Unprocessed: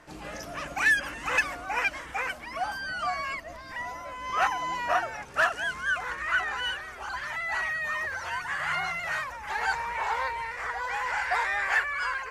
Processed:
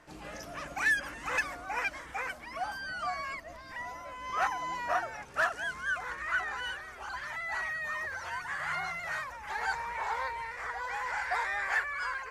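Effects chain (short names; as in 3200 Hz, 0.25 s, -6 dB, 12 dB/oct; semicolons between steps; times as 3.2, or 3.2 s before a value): dynamic EQ 2800 Hz, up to -6 dB, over -48 dBFS, Q 4.7; gain -4.5 dB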